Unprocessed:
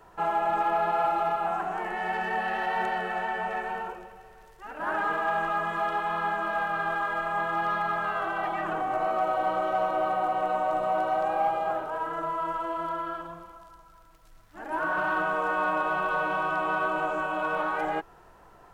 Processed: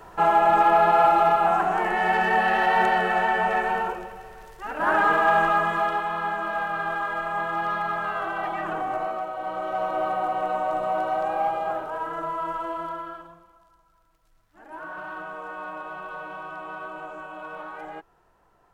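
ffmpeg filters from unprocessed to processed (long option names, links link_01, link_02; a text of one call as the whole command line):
ffmpeg -i in.wav -af "volume=15.5dB,afade=type=out:start_time=5.4:duration=0.7:silence=0.446684,afade=type=out:start_time=8.89:duration=0.42:silence=0.421697,afade=type=in:start_time=9.31:duration=0.69:silence=0.421697,afade=type=out:start_time=12.69:duration=0.72:silence=0.316228" out.wav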